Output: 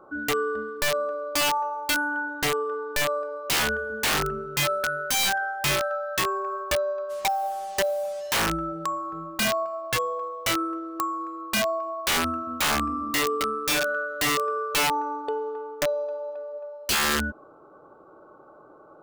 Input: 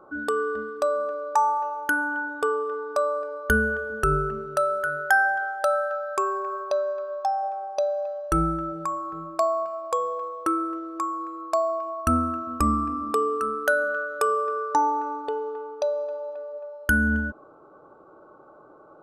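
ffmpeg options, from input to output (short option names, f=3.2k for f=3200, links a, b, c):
-filter_complex "[0:a]aeval=exprs='(mod(7.94*val(0)+1,2)-1)/7.94':c=same,asplit=3[a][b][c];[a]afade=t=out:st=7.09:d=0.02[d];[b]acrusher=bits=6:mix=0:aa=0.5,afade=t=in:st=7.09:d=0.02,afade=t=out:st=8.32:d=0.02[e];[c]afade=t=in:st=8.32:d=0.02[f];[d][e][f]amix=inputs=3:normalize=0"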